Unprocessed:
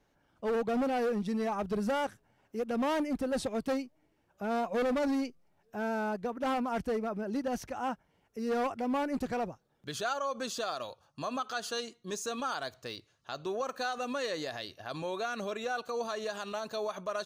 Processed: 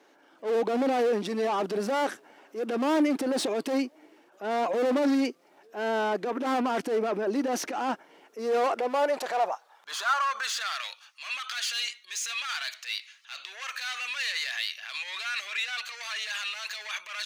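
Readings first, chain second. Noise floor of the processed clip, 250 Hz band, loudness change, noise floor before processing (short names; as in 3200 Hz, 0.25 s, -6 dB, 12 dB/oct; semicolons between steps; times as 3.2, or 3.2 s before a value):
-60 dBFS, +3.5 dB, +5.0 dB, -73 dBFS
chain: overdrive pedal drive 20 dB, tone 5600 Hz, clips at -22 dBFS; transient shaper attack -10 dB, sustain +4 dB; high-pass sweep 310 Hz -> 2200 Hz, 8.3–10.96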